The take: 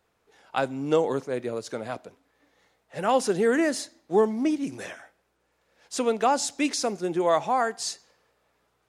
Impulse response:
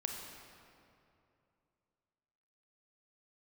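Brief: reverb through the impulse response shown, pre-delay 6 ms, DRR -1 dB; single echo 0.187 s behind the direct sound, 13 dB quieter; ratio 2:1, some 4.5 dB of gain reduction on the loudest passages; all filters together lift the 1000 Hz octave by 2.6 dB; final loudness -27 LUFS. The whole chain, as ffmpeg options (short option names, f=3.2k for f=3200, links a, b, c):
-filter_complex "[0:a]equalizer=f=1k:t=o:g=3.5,acompressor=threshold=-23dB:ratio=2,aecho=1:1:187:0.224,asplit=2[a][b];[1:a]atrim=start_sample=2205,adelay=6[c];[b][c]afir=irnorm=-1:irlink=0,volume=0dB[d];[a][d]amix=inputs=2:normalize=0,volume=-3dB"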